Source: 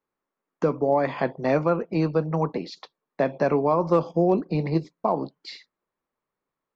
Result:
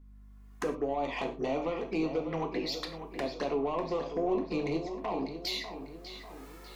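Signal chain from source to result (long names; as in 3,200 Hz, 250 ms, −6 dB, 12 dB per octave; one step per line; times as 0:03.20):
camcorder AGC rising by 23 dB per second
high-pass filter 360 Hz 12 dB per octave
parametric band 580 Hz −6 dB 1.2 octaves
downward compressor 3 to 1, threshold −35 dBFS, peak gain reduction 11.5 dB
soft clipping −31.5 dBFS, distortion −13 dB
flanger swept by the level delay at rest 2.9 ms, full sweep at −36.5 dBFS
mains hum 50 Hz, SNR 20 dB
on a send: feedback echo with a low-pass in the loop 596 ms, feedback 49%, low-pass 4,900 Hz, level −10 dB
on the sum: reverb whose tail is shaped and stops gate 140 ms falling, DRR 4 dB
level +7 dB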